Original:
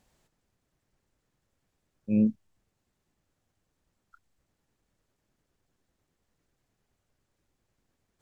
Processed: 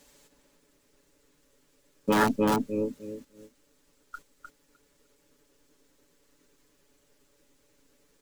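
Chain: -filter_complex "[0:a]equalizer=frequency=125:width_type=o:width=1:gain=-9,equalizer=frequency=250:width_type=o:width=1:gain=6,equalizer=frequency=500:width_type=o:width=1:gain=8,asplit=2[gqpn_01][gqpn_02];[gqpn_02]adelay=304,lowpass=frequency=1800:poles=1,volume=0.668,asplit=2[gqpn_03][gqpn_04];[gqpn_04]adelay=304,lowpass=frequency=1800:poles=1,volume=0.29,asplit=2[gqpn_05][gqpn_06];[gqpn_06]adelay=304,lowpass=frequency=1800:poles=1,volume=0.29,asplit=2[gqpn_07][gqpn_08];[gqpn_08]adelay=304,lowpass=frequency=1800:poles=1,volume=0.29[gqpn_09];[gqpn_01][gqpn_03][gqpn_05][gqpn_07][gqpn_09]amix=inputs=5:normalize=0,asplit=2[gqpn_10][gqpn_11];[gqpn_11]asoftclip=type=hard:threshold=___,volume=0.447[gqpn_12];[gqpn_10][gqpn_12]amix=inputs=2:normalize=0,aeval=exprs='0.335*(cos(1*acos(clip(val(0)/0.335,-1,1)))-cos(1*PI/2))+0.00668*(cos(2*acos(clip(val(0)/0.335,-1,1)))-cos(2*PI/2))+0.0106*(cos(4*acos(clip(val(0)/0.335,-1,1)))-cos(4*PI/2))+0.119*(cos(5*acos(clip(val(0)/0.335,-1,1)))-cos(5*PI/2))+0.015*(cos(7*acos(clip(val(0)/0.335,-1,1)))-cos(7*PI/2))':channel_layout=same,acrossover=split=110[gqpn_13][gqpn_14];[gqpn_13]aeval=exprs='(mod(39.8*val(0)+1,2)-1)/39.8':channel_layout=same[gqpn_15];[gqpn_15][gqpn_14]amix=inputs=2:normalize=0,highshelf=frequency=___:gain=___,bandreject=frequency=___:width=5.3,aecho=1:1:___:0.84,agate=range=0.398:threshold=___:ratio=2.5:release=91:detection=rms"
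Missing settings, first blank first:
0.0794, 2200, 10.5, 710, 7, 0.00501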